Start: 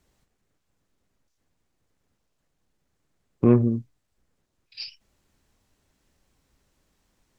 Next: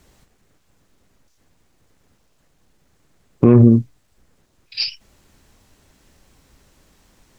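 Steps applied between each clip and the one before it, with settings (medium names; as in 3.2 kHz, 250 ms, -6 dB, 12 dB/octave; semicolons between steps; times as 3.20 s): loudness maximiser +15 dB; trim -1 dB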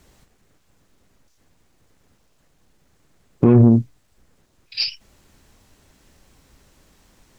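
saturation -3.5 dBFS, distortion -20 dB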